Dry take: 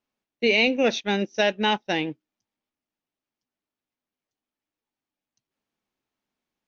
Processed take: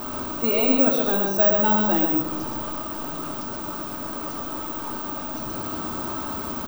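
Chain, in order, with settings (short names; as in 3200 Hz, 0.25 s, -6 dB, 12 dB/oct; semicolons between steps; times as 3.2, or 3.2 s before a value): zero-crossing step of -24 dBFS; resonant high shelf 1600 Hz -7 dB, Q 3; on a send: echo 0.127 s -4 dB; on the sum: careless resampling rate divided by 2×, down filtered, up zero stuff; shoebox room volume 3400 m³, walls furnished, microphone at 2.7 m; gain -4.5 dB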